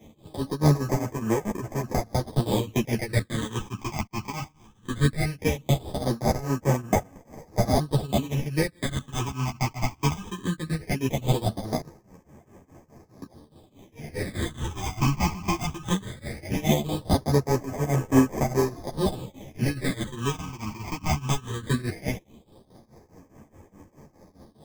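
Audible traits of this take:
aliases and images of a low sample rate 1,400 Hz, jitter 0%
phaser sweep stages 8, 0.18 Hz, lowest notch 500–3,900 Hz
tremolo triangle 4.8 Hz, depth 95%
a shimmering, thickened sound

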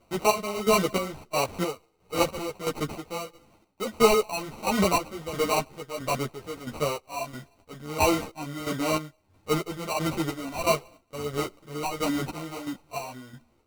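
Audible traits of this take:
a quantiser's noise floor 12 bits, dither none
chopped level 1.5 Hz, depth 65%, duty 45%
aliases and images of a low sample rate 1,700 Hz, jitter 0%
a shimmering, thickened sound

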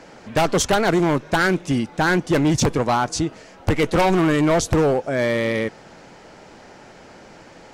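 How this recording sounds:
background noise floor −45 dBFS
spectral slope −5.0 dB per octave

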